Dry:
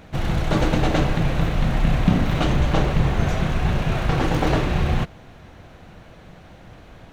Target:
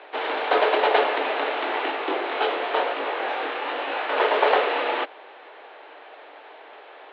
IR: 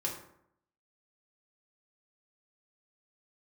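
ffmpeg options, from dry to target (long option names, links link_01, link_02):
-filter_complex "[0:a]asplit=3[link_01][link_02][link_03];[link_01]afade=type=out:start_time=1.9:duration=0.02[link_04];[link_02]flanger=delay=18:depth=7.1:speed=1,afade=type=in:start_time=1.9:duration=0.02,afade=type=out:start_time=4.15:duration=0.02[link_05];[link_03]afade=type=in:start_time=4.15:duration=0.02[link_06];[link_04][link_05][link_06]amix=inputs=3:normalize=0,highpass=frequency=310:width_type=q:width=0.5412,highpass=frequency=310:width_type=q:width=1.307,lowpass=frequency=3500:width_type=q:width=0.5176,lowpass=frequency=3500:width_type=q:width=0.7071,lowpass=frequency=3500:width_type=q:width=1.932,afreqshift=120,volume=4.5dB"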